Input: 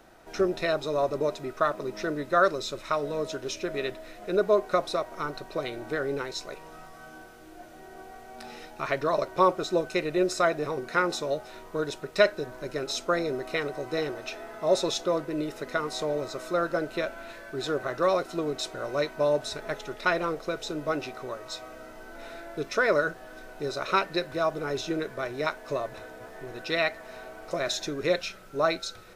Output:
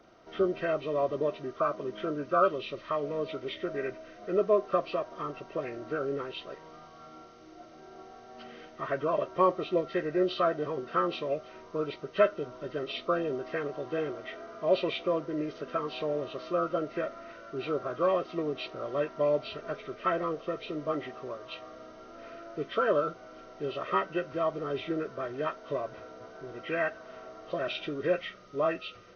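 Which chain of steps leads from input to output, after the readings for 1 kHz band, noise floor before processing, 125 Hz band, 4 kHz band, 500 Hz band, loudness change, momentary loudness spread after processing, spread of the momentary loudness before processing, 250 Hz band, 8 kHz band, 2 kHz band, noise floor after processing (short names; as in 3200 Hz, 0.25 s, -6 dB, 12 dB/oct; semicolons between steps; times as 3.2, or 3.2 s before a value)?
-3.0 dB, -47 dBFS, -3.0 dB, -7.0 dB, -2.0 dB, -3.0 dB, 19 LU, 19 LU, -2.0 dB, under -20 dB, -7.5 dB, -51 dBFS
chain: nonlinear frequency compression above 1100 Hz 1.5:1; notch comb 850 Hz; gain -2 dB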